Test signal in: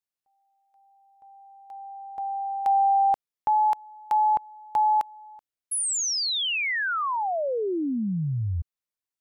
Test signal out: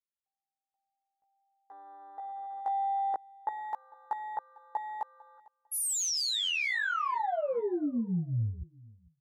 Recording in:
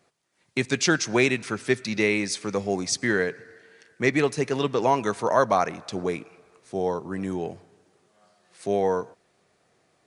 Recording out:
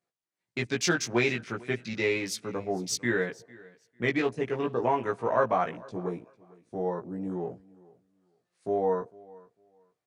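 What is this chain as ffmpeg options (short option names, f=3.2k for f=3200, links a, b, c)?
-filter_complex "[0:a]afwtdn=0.0158,asplit=2[a][b];[b]adelay=17,volume=-2dB[c];[a][c]amix=inputs=2:normalize=0,aecho=1:1:450|900:0.0708|0.0142,volume=-6.5dB"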